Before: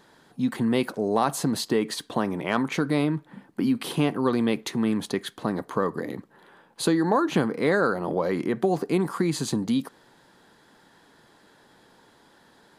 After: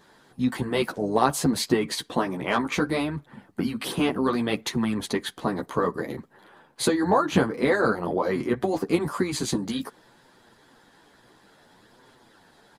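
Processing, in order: chorus voices 2, 0.62 Hz, delay 12 ms, depth 4.3 ms; harmonic-percussive split percussive +6 dB; harmony voices -12 st -15 dB

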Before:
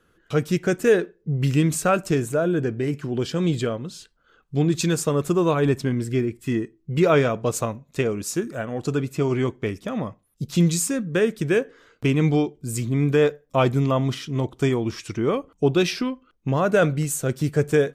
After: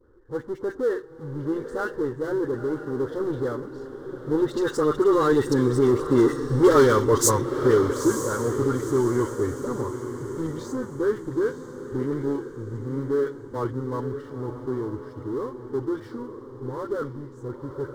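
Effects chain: Doppler pass-by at 6.54 s, 20 m/s, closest 7.4 m; level-controlled noise filter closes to 740 Hz, open at -25.5 dBFS; in parallel at -3 dB: compressor with a negative ratio -32 dBFS; on the sum: saturation -18 dBFS, distortion -12 dB; phase dispersion highs, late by 65 ms, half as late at 1.5 kHz; power-law waveshaper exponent 0.7; static phaser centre 670 Hz, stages 6; on a send: echo that smears into a reverb 934 ms, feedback 44%, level -9.5 dB; on the sum: trim +7 dB

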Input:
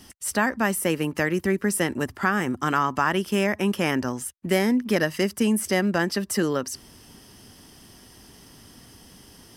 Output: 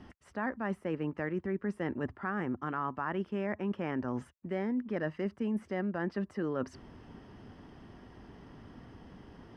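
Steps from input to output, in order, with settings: low-pass 1.6 kHz 12 dB/octave; reverse; compression 6:1, threshold -31 dBFS, peak gain reduction 13.5 dB; reverse

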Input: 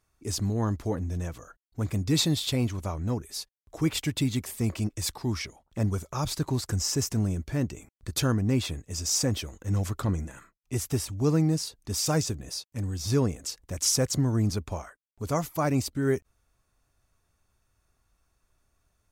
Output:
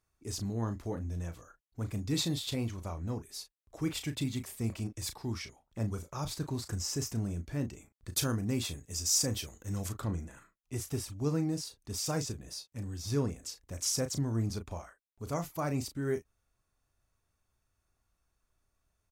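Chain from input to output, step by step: 8.12–9.89 s: treble shelf 4.7 kHz +9 dB; doubling 35 ms -9.5 dB; trim -7.5 dB

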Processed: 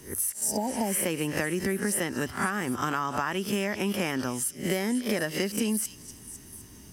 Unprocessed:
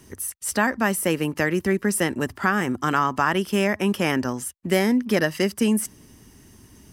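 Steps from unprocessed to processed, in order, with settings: reverse spectral sustain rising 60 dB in 0.32 s; treble shelf 5.4 kHz +4.5 dB; spectral replace 0.45–0.99 s, 980–4700 Hz both; compression, threshold -23 dBFS, peak gain reduction 9 dB; on a send: repeats whose band climbs or falls 252 ms, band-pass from 4.5 kHz, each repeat 0.7 oct, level -7.5 dB; on the sum: trim -1.5 dB

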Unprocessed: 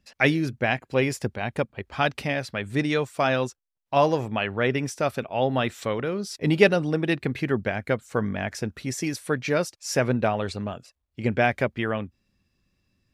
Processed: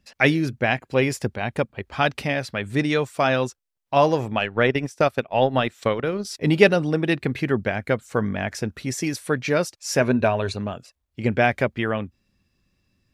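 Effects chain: 4.33–6.25 s: transient shaper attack +5 dB, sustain -11 dB; 10.00–10.57 s: rippled EQ curve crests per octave 1.5, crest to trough 7 dB; trim +2.5 dB

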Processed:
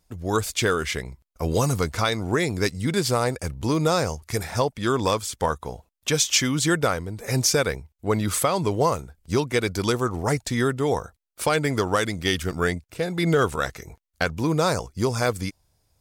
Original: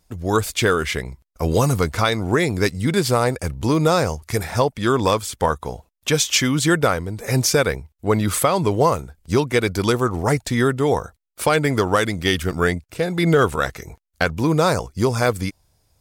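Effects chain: dynamic bell 6.1 kHz, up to +4 dB, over -39 dBFS, Q 1; trim -4.5 dB

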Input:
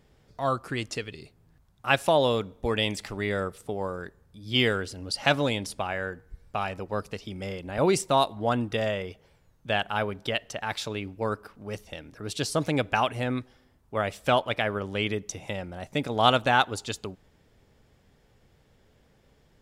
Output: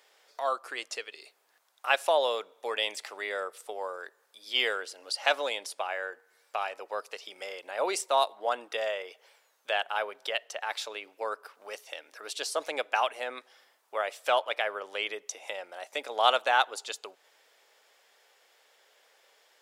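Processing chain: high-pass 490 Hz 24 dB/octave; tape noise reduction on one side only encoder only; trim -2 dB

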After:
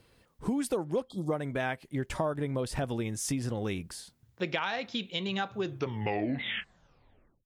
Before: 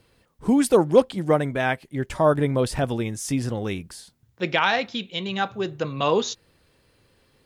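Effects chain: tape stop on the ending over 1.86 s; spectral selection erased 1.09–1.32 s, 1.3–3.2 kHz; compression 6:1, threshold -26 dBFS, peak gain reduction 15.5 dB; trim -2 dB

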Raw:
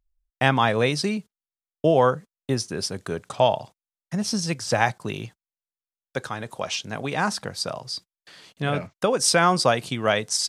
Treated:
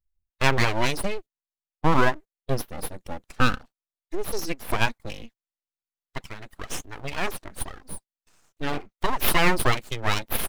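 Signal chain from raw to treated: expander on every frequency bin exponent 1.5; full-wave rectifier; trim +3 dB

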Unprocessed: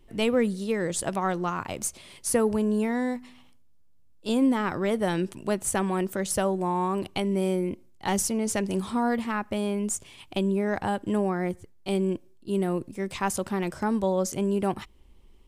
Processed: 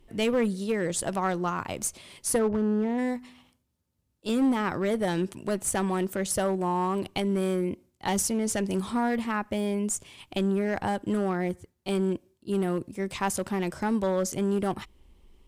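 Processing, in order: 2.38–2.97 s: low-pass 1.9 kHz -> 1.1 kHz 12 dB/octave; one-sided clip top -20.5 dBFS

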